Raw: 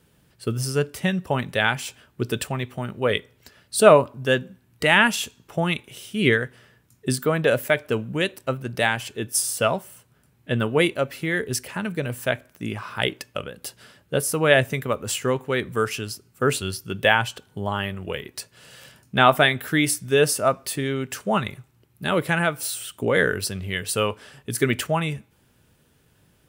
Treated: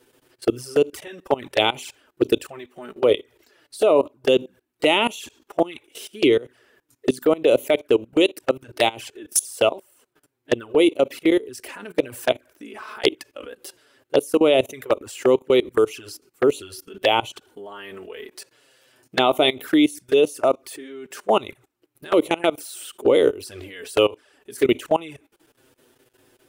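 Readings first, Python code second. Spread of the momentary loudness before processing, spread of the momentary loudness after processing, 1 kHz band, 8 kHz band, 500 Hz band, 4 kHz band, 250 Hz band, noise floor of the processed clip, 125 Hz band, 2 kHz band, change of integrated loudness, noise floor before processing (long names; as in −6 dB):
14 LU, 20 LU, −1.0 dB, −4.0 dB, +3.5 dB, +1.0 dB, +3.5 dB, −71 dBFS, −12.5 dB, −6.5 dB, +2.0 dB, −62 dBFS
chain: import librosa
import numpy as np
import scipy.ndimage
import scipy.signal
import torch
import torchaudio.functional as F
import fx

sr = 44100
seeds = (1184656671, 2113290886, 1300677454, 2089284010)

y = fx.low_shelf_res(x, sr, hz=240.0, db=-9.5, q=3.0)
y = fx.level_steps(y, sr, step_db=21)
y = fx.env_flanger(y, sr, rest_ms=8.3, full_db=-23.0)
y = F.gain(torch.from_numpy(y), 8.0).numpy()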